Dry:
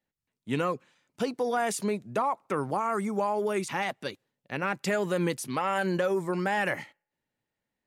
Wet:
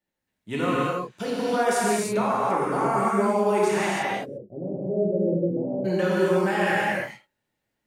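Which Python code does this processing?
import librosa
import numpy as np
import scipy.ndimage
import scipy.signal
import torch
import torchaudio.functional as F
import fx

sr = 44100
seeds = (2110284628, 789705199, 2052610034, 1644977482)

y = fx.steep_lowpass(x, sr, hz=610.0, slope=48, at=(4.01, 5.84), fade=0.02)
y = fx.rev_gated(y, sr, seeds[0], gate_ms=360, shape='flat', drr_db=-7.5)
y = y * 10.0 ** (-2.0 / 20.0)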